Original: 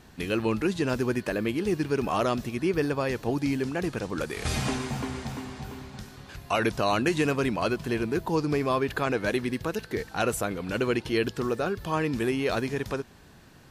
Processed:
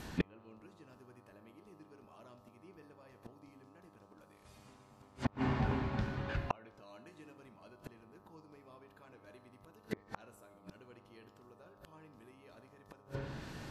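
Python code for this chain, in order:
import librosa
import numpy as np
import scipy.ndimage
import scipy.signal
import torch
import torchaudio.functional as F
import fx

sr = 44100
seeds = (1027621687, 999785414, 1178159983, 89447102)

y = fx.peak_eq(x, sr, hz=12000.0, db=8.5, octaves=0.34)
y = fx.rev_fdn(y, sr, rt60_s=0.83, lf_ratio=1.4, hf_ratio=0.8, size_ms=10.0, drr_db=7.0)
y = fx.gate_flip(y, sr, shuts_db=-23.0, range_db=-38)
y = fx.dmg_buzz(y, sr, base_hz=100.0, harmonics=13, level_db=-70.0, tilt_db=-1, odd_only=False)
y = fx.env_lowpass_down(y, sr, base_hz=2300.0, full_db=-40.5)
y = y * 10.0 ** (5.0 / 20.0)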